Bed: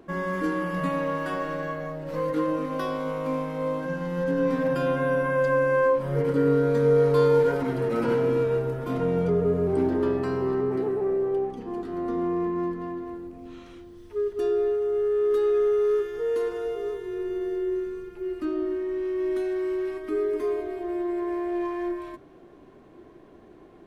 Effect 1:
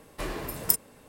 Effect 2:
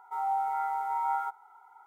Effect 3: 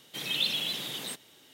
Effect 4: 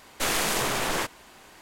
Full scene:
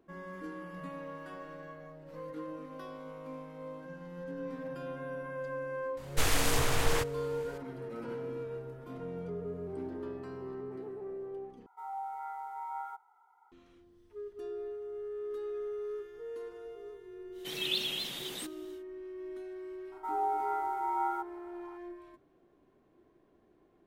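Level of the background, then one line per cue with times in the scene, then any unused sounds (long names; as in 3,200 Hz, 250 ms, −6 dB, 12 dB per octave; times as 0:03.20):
bed −16 dB
0:05.97: mix in 4 −5 dB + low shelf with overshoot 130 Hz +13.5 dB, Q 1.5
0:11.66: overwrite with 2 −10 dB
0:17.31: mix in 3 −4 dB, fades 0.10 s + pitch vibrato 4.5 Hz 52 cents
0:19.92: mix in 2 −2.5 dB
not used: 1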